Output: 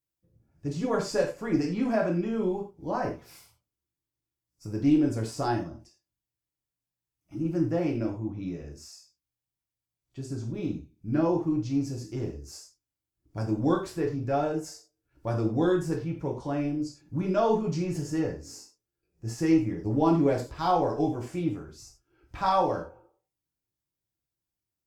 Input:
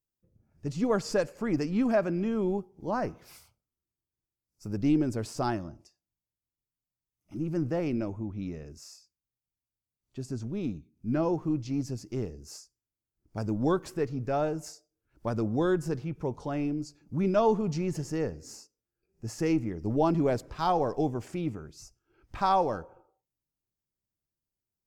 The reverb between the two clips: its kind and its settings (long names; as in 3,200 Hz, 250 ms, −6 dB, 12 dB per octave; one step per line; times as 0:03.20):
reverb whose tail is shaped and stops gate 130 ms falling, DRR −1 dB
level −2.5 dB